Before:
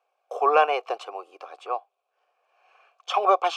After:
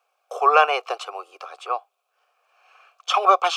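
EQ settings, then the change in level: high-pass 340 Hz 24 dB/octave; peaking EQ 1.3 kHz +8 dB 0.3 oct; treble shelf 2.3 kHz +10.5 dB; 0.0 dB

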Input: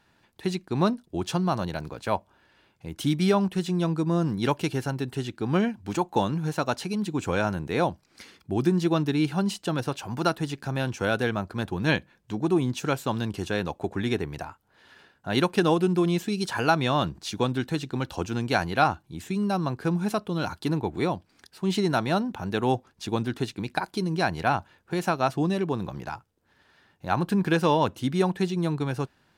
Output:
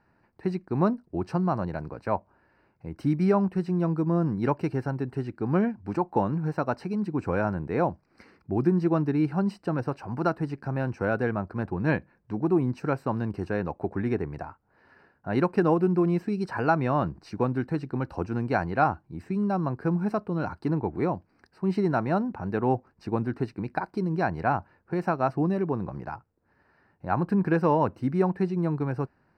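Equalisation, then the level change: boxcar filter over 13 samples; 0.0 dB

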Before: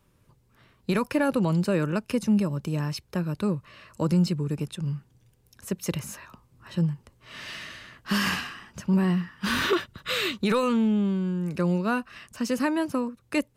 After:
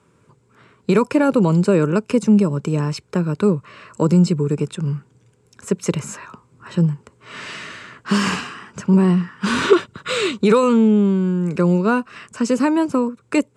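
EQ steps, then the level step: bass shelf 440 Hz +7.5 dB; dynamic bell 1.6 kHz, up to -6 dB, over -40 dBFS, Q 1.3; cabinet simulation 140–9500 Hz, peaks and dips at 430 Hz +8 dB, 1 kHz +6 dB, 1.4 kHz +9 dB, 2.3 kHz +5 dB, 7.6 kHz +9 dB; +3.0 dB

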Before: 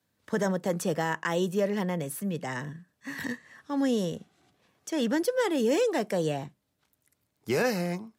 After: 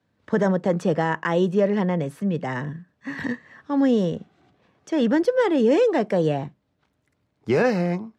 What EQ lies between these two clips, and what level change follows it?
tape spacing loss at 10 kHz 22 dB; +8.0 dB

